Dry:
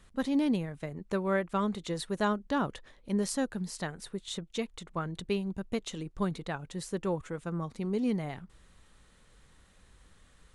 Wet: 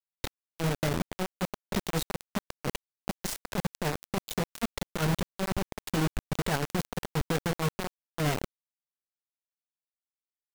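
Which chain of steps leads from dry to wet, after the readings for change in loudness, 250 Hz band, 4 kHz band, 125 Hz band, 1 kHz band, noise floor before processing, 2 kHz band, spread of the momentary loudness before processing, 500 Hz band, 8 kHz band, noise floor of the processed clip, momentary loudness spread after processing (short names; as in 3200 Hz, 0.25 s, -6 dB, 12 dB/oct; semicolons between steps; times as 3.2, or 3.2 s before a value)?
+0.5 dB, -2.0 dB, +4.5 dB, +5.5 dB, +1.0 dB, -62 dBFS, +3.5 dB, 9 LU, -1.0 dB, +4.0 dB, under -85 dBFS, 8 LU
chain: tilt -2 dB/oct; negative-ratio compressor -32 dBFS, ratio -0.5; bit-crush 5-bit; gain +1.5 dB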